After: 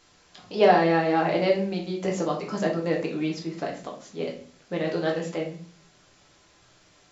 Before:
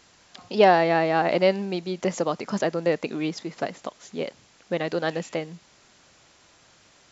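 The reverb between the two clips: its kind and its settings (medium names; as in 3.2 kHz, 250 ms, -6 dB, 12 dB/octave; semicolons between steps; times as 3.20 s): simulated room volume 45 m³, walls mixed, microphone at 0.72 m; trim -5.5 dB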